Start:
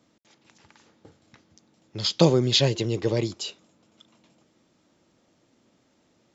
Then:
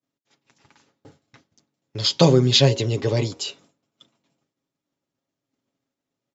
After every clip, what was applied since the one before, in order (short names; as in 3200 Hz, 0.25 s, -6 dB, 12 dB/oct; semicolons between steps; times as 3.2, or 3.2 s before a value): comb 7.3 ms, depth 53%; de-hum 79.08 Hz, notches 12; expander -50 dBFS; gain +3 dB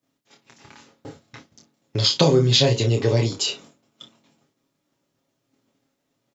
early reflections 26 ms -4.5 dB, 57 ms -15.5 dB; compressor 2:1, threshold -31 dBFS, peak gain reduction 12 dB; gain +8.5 dB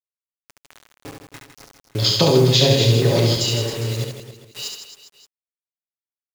reverse delay 0.674 s, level -7 dB; bit-crush 6-bit; reverse bouncing-ball echo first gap 70 ms, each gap 1.25×, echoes 5